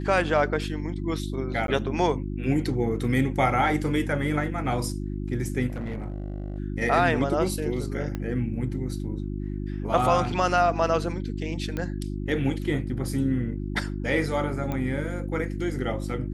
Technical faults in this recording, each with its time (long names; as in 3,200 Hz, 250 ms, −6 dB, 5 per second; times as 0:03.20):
mains hum 50 Hz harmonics 7 −31 dBFS
0:01.67–0:01.68: drop-out 12 ms
0:05.67–0:06.58: clipping −27.5 dBFS
0:08.15: click −18 dBFS
0:11.77: click −18 dBFS
0:14.72: click −18 dBFS